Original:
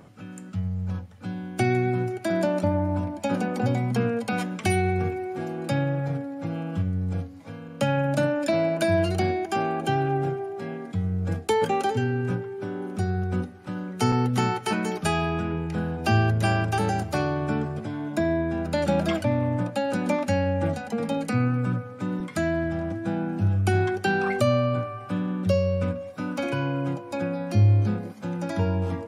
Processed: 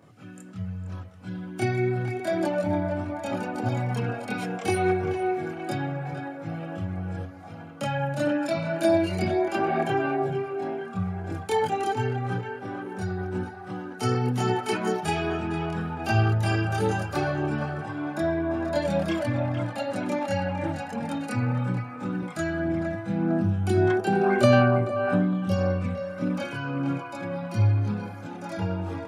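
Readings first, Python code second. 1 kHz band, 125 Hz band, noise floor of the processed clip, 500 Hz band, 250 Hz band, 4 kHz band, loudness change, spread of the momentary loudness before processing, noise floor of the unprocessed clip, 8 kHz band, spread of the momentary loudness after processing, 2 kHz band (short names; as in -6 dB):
-0.5 dB, -2.0 dB, -40 dBFS, -0.5 dB, -1.0 dB, -2.0 dB, -1.0 dB, 9 LU, -41 dBFS, -3.0 dB, 12 LU, -0.5 dB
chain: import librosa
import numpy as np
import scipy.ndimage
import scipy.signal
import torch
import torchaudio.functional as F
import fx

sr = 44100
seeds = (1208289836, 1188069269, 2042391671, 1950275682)

y = scipy.signal.sosfilt(scipy.signal.butter(2, 110.0, 'highpass', fs=sr, output='sos'), x)
y = fx.echo_banded(y, sr, ms=458, feedback_pct=70, hz=1100.0, wet_db=-4.0)
y = fx.chorus_voices(y, sr, voices=6, hz=0.85, base_ms=26, depth_ms=1.7, mix_pct=60)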